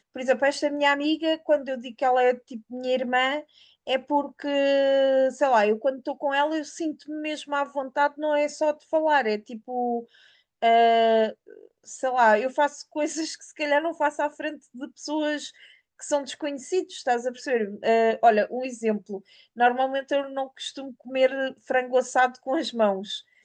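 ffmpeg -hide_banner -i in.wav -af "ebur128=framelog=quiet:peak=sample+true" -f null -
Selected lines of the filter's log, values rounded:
Integrated loudness:
  I:         -24.7 LUFS
  Threshold: -35.1 LUFS
Loudness range:
  LRA:         5.1 LU
  Threshold: -45.2 LUFS
  LRA low:   -28.5 LUFS
  LRA high:  -23.4 LUFS
Sample peak:
  Peak:       -6.8 dBFS
True peak:
  Peak:       -6.8 dBFS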